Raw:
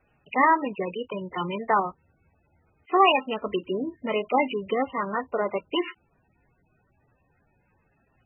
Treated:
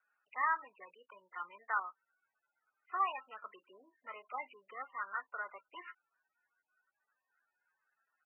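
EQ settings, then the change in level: ladder band-pass 1600 Hz, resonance 70%; air absorption 470 m; high shelf 2100 Hz -11 dB; +4.0 dB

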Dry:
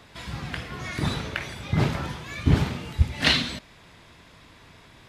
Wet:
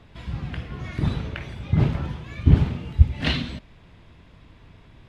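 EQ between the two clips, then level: tilt -3 dB/oct; bell 2900 Hz +5 dB 0.78 oct; -5.0 dB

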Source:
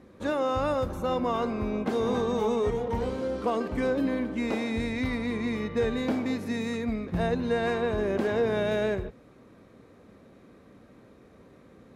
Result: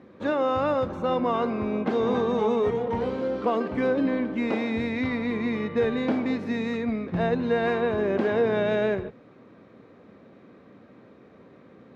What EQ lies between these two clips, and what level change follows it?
BPF 120–3600 Hz; +3.0 dB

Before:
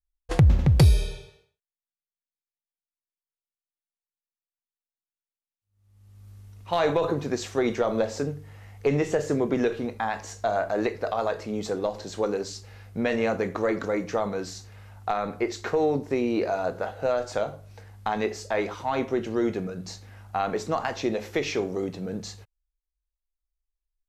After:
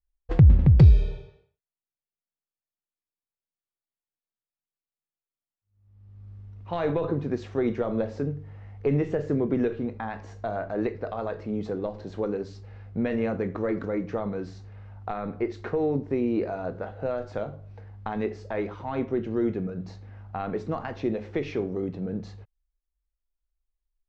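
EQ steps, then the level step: low shelf 410 Hz +3.5 dB; dynamic EQ 750 Hz, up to -5 dB, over -35 dBFS, Q 0.9; tape spacing loss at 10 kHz 32 dB; 0.0 dB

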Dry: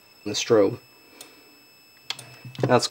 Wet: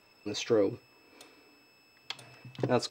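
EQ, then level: LPF 3800 Hz 6 dB/oct; bell 140 Hz -3 dB 0.87 oct; dynamic EQ 1100 Hz, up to -6 dB, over -34 dBFS, Q 0.76; -6.0 dB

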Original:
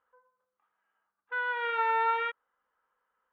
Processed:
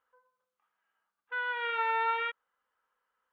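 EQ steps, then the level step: bell 3000 Hz +6 dB 1.3 oct; -3.5 dB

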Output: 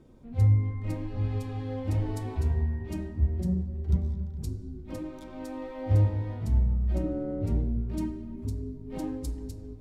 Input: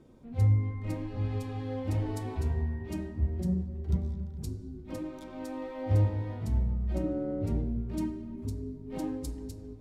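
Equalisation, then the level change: low shelf 71 Hz +8 dB; 0.0 dB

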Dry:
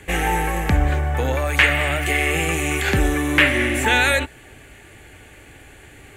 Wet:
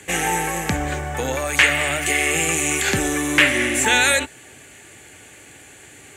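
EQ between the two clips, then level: HPF 120 Hz 12 dB/oct; bell 7100 Hz +11.5 dB 1.3 oct; -1.0 dB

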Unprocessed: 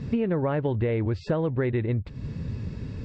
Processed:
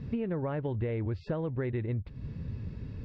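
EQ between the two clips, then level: LPF 4600 Hz 12 dB/oct; low shelf 100 Hz +5.5 dB; -8.0 dB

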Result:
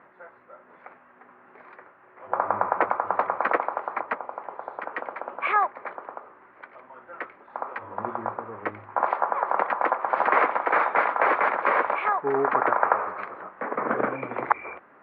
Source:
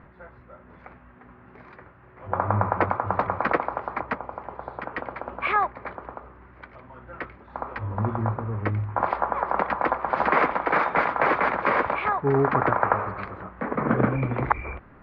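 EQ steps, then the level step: BPF 430–2600 Hz; +1.0 dB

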